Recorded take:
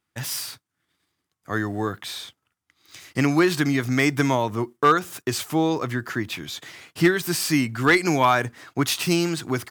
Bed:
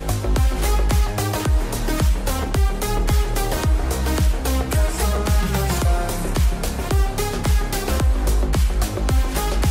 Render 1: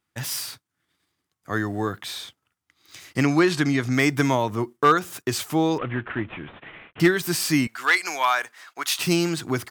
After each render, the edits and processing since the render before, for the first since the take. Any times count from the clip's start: 3.23–3.94 LPF 9100 Hz; 5.78–7 CVSD 16 kbps; 7.67–8.99 HPF 910 Hz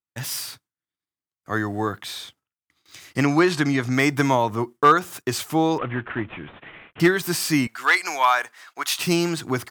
gate with hold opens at -45 dBFS; dynamic EQ 900 Hz, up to +4 dB, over -35 dBFS, Q 1.1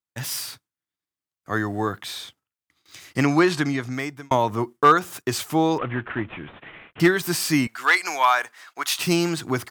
3.47–4.31 fade out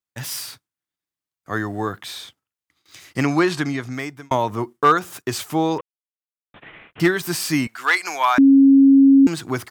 5.81–6.54 mute; 8.38–9.27 bleep 273 Hz -7.5 dBFS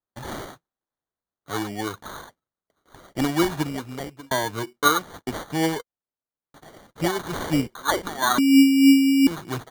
flange 0.99 Hz, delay 1.2 ms, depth 6.1 ms, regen +40%; sample-and-hold 17×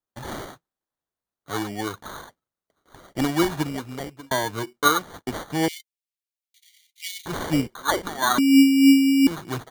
5.68–7.26 steep high-pass 2100 Hz 96 dB/oct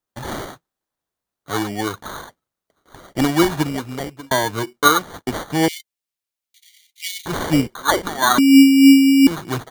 gain +5.5 dB; limiter -3 dBFS, peak gain reduction 1 dB

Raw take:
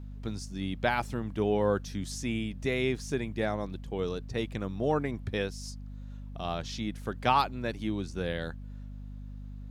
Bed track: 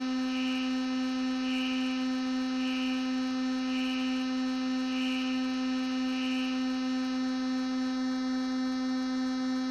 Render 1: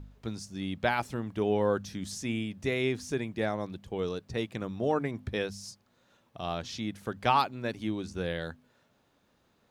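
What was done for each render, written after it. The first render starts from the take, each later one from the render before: de-hum 50 Hz, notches 5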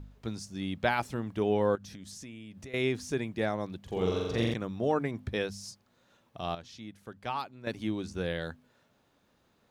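1.75–2.74 compressor 8:1, threshold -42 dBFS; 3.83–4.54 flutter echo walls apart 7.4 m, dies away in 1.5 s; 6.55–7.67 gain -10 dB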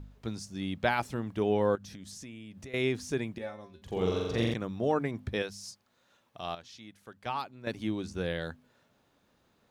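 3.38–3.82 resonator 78 Hz, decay 0.28 s, harmonics odd, mix 90%; 5.42–7.26 low shelf 480 Hz -7.5 dB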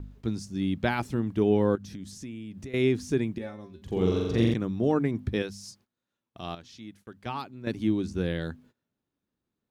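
gate -59 dBFS, range -20 dB; resonant low shelf 440 Hz +6 dB, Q 1.5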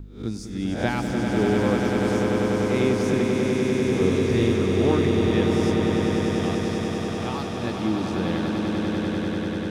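spectral swells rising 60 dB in 0.44 s; swelling echo 98 ms, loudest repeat 8, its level -6 dB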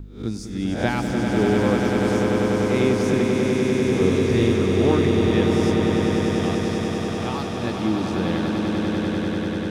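gain +2 dB

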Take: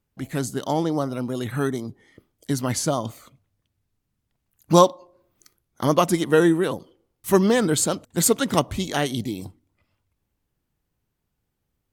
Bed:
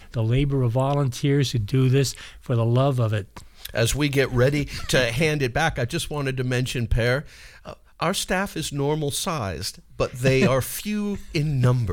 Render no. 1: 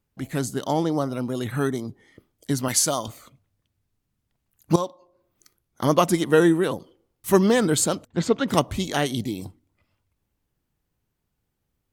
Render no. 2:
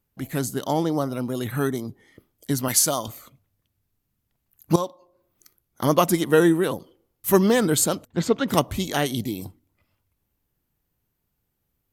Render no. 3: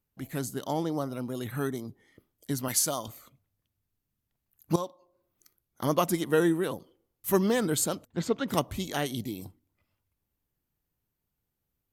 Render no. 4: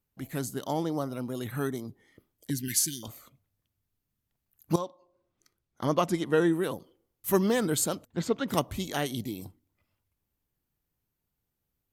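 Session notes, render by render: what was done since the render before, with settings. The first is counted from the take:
2.68–3.08 tilt +2.5 dB/oct; 4.76–6.05 fade in equal-power, from -16.5 dB; 8.07–8.48 air absorption 190 m
bell 13000 Hz +11.5 dB 0.35 oct
gain -7 dB
2.5–3.03 brick-wall FIR band-stop 400–1500 Hz; 4.78–6.53 air absorption 58 m

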